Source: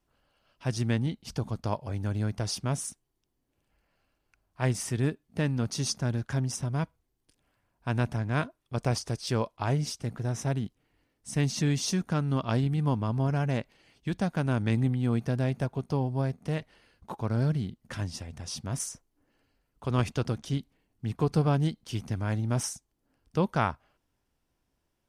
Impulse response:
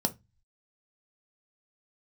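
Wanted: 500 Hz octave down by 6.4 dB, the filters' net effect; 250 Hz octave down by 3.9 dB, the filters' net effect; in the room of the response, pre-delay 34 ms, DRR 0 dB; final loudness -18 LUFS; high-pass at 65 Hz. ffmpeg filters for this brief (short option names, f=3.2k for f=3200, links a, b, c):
-filter_complex "[0:a]highpass=65,equalizer=f=250:t=o:g=-4,equalizer=f=500:t=o:g=-7,asplit=2[a][b];[1:a]atrim=start_sample=2205,adelay=34[c];[b][c]afir=irnorm=-1:irlink=0,volume=-6dB[d];[a][d]amix=inputs=2:normalize=0,volume=7.5dB"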